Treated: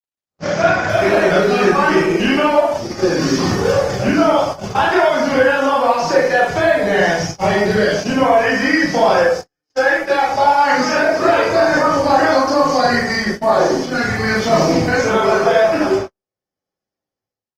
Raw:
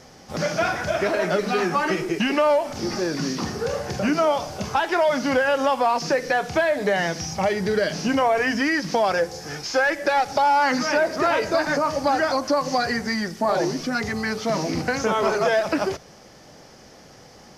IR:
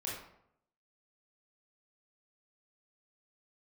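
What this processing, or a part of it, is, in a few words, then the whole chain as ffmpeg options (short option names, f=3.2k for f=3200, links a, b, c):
speakerphone in a meeting room: -filter_complex "[1:a]atrim=start_sample=2205[a];[0:a][a]afir=irnorm=-1:irlink=0,dynaudnorm=f=160:g=5:m=16.5dB,agate=range=-56dB:threshold=-19dB:ratio=16:detection=peak,volume=-1dB" -ar 48000 -c:a libopus -b:a 20k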